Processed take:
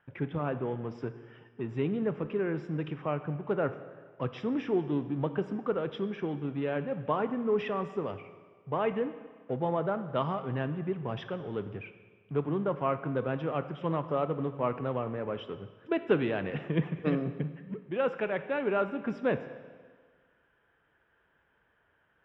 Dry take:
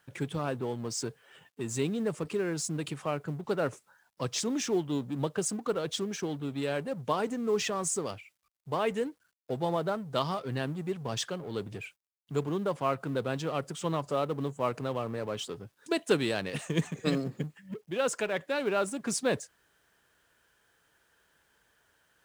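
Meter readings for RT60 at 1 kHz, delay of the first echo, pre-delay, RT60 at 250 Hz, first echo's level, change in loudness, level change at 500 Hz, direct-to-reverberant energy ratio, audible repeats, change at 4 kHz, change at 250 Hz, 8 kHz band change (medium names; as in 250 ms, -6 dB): 1.6 s, no echo, 17 ms, 1.6 s, no echo, 0.0 dB, +0.5 dB, 10.5 dB, no echo, -10.5 dB, +1.0 dB, under -35 dB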